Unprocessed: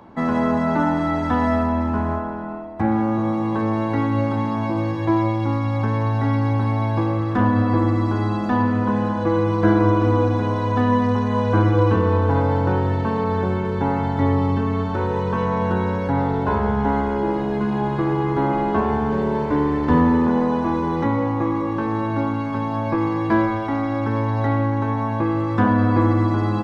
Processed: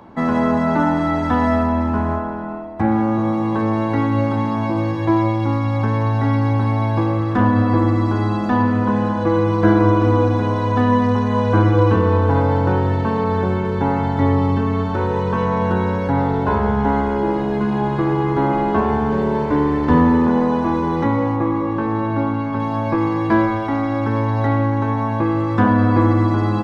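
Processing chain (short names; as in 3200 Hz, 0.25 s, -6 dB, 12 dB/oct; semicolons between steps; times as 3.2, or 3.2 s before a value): 21.36–22.6 LPF 3000 Hz 6 dB/oct; gain +2.5 dB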